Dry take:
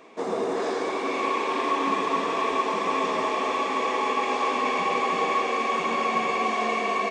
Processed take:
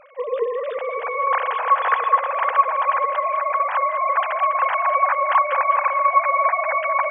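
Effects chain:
three sine waves on the formant tracks
echo with a time of its own for lows and highs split 850 Hz, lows 554 ms, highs 203 ms, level −11.5 dB
level +5 dB

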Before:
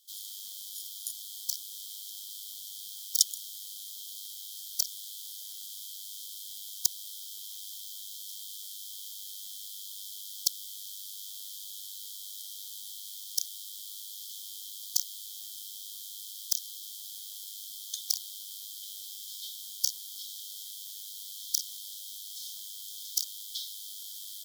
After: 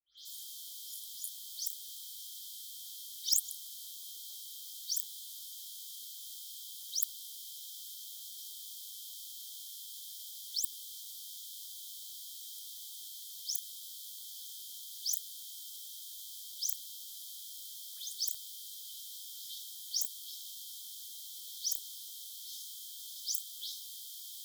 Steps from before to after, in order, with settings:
every frequency bin delayed by itself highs late, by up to 173 ms
hum removal 76.08 Hz, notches 27
level −3.5 dB

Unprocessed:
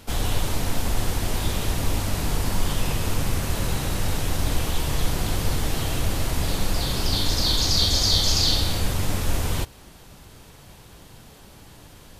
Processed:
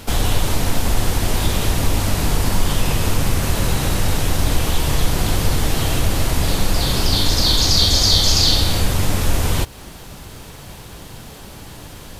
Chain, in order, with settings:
in parallel at +1 dB: downward compressor, threshold −29 dBFS, peak gain reduction 14 dB
on the sum: bit-depth reduction 10 bits, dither none
level +3.5 dB

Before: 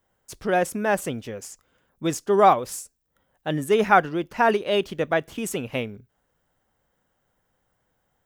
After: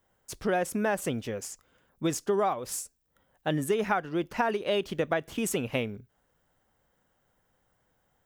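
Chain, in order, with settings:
downward compressor 16 to 1, threshold −23 dBFS, peak gain reduction 13.5 dB

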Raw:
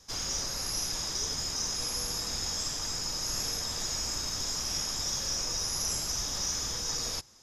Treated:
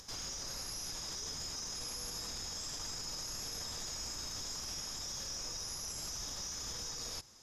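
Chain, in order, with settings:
upward compression, threshold −47 dBFS
brickwall limiter −31.5 dBFS, peak gain reduction 11.5 dB
level −1.5 dB

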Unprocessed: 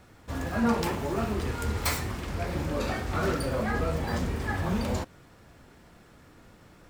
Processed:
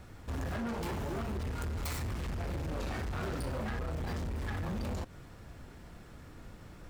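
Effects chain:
low-shelf EQ 110 Hz +10 dB
downward compressor, threshold −28 dBFS, peak gain reduction 10 dB
hard clipping −33.5 dBFS, distortion −8 dB

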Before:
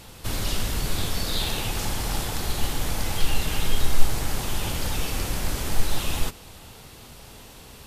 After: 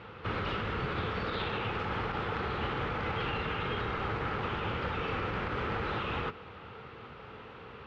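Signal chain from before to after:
loudspeaker in its box 100–2,700 Hz, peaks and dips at 160 Hz −3 dB, 270 Hz −5 dB, 460 Hz +6 dB, 650 Hz −5 dB, 1,300 Hz +9 dB
brickwall limiter −24.5 dBFS, peak gain reduction 7.5 dB

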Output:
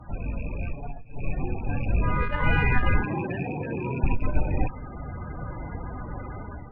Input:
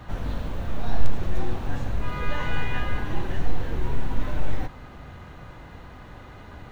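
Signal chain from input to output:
loose part that buzzes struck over −30 dBFS, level −24 dBFS
spectral peaks only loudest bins 32
0:00.71–0:01.44: comb filter 7 ms, depth 74%
automatic gain control gain up to 11 dB
0:03.02–0:04.04: high-pass filter 120 Hz 24 dB per octave
tube saturation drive 6 dB, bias 0.45

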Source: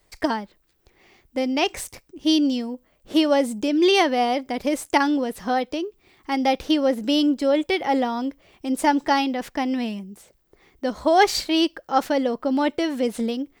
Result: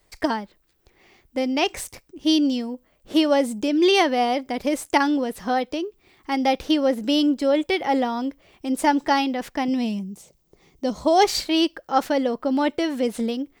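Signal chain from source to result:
0:09.68–0:11.25: graphic EQ with 15 bands 160 Hz +9 dB, 1,600 Hz −9 dB, 6,300 Hz +6 dB

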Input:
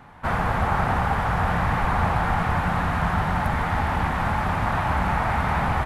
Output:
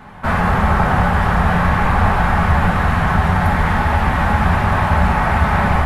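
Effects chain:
in parallel at 0 dB: brickwall limiter −20 dBFS, peak gain reduction 9.5 dB
on the sum: convolution reverb RT60 0.85 s, pre-delay 5 ms, DRR −0.5 dB

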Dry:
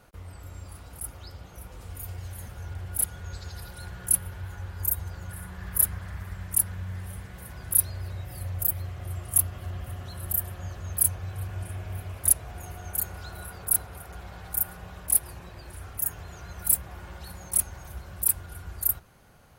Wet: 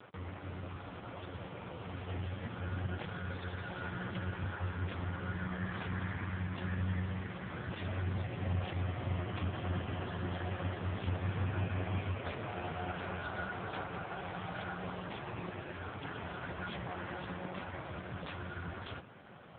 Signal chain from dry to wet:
high-pass filter 110 Hz 12 dB per octave
soft clipping −18.5 dBFS, distortion −8 dB
level +8.5 dB
AMR narrowband 5.15 kbit/s 8,000 Hz

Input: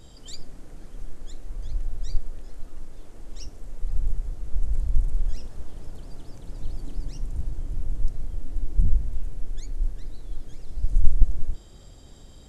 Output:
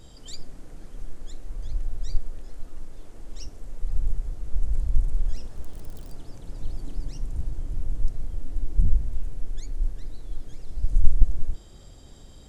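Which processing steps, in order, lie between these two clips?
0:05.56–0:06.15: spike at every zero crossing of −36.5 dBFS

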